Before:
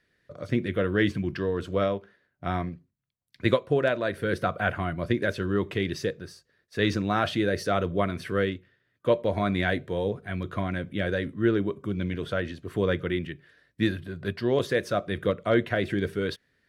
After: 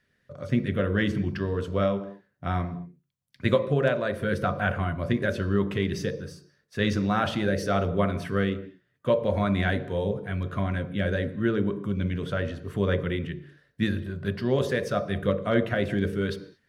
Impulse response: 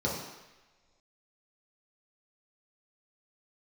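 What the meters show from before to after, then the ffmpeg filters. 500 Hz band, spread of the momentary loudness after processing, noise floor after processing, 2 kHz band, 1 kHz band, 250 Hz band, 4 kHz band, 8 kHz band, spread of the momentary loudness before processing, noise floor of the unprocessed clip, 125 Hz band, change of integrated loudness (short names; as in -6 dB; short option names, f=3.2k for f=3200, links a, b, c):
-0.5 dB, 8 LU, -72 dBFS, -0.5 dB, 0.0 dB, +1.0 dB, -1.0 dB, 0.0 dB, 8 LU, -74 dBFS, +3.0 dB, +0.5 dB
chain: -filter_complex "[0:a]asplit=2[a][b];[1:a]atrim=start_sample=2205,afade=t=out:st=0.29:d=0.01,atrim=end_sample=13230[c];[b][c]afir=irnorm=-1:irlink=0,volume=-17.5dB[d];[a][d]amix=inputs=2:normalize=0"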